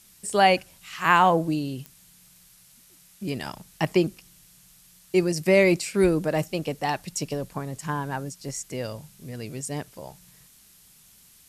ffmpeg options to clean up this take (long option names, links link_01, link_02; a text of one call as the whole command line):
ffmpeg -i in.wav -af "adeclick=threshold=4,afftdn=noise_reduction=13:noise_floor=-55" out.wav